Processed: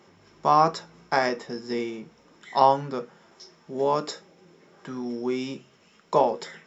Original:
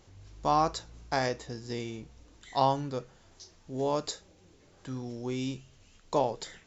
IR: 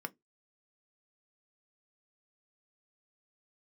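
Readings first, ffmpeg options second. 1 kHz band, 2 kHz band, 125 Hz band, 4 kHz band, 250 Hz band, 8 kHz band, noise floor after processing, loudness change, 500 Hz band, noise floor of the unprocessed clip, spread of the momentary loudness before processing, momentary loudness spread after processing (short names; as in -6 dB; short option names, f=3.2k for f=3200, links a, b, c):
+7.5 dB, +7.0 dB, -1.0 dB, +2.5 dB, +4.5 dB, n/a, -59 dBFS, +7.0 dB, +6.5 dB, -60 dBFS, 14 LU, 17 LU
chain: -filter_complex "[0:a]highpass=f=210:p=1[a];[1:a]atrim=start_sample=2205[b];[a][b]afir=irnorm=-1:irlink=0,volume=7dB"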